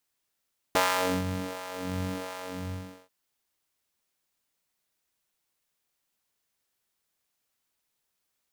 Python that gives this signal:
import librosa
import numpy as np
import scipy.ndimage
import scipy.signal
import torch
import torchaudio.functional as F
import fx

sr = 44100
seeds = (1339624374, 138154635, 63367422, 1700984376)

y = fx.sub_patch_wobble(sr, seeds[0], note=42, wave='square', wave2='square', interval_st=12, level2_db=-9.0, sub_db=-15.0, noise_db=-21, kind='highpass', cutoff_hz=200.0, q=1.3, env_oct=1.5, env_decay_s=0.27, env_sustain_pct=40, attack_ms=2.7, decay_s=0.48, sustain_db=-16.5, release_s=0.74, note_s=1.6, lfo_hz=1.4, wobble_oct=1.3)